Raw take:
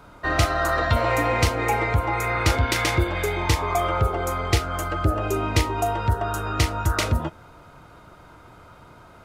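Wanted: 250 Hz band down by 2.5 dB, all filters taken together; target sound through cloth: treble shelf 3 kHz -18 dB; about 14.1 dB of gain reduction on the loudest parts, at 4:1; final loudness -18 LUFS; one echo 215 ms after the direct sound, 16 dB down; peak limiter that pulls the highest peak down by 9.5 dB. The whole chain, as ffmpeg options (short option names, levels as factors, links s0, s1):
-af "equalizer=f=250:t=o:g=-3.5,acompressor=threshold=0.0224:ratio=4,alimiter=level_in=1.5:limit=0.0631:level=0:latency=1,volume=0.668,highshelf=f=3000:g=-18,aecho=1:1:215:0.158,volume=11.2"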